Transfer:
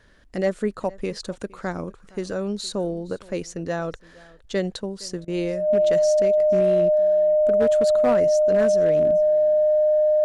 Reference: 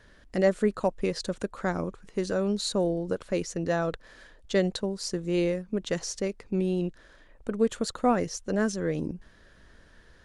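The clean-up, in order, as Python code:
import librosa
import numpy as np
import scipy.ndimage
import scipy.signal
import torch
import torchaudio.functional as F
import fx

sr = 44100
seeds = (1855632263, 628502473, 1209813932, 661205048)

y = fx.fix_declip(x, sr, threshold_db=-13.0)
y = fx.notch(y, sr, hz=610.0, q=30.0)
y = fx.fix_interpolate(y, sr, at_s=(5.25,), length_ms=27.0)
y = fx.fix_echo_inverse(y, sr, delay_ms=464, level_db=-23.0)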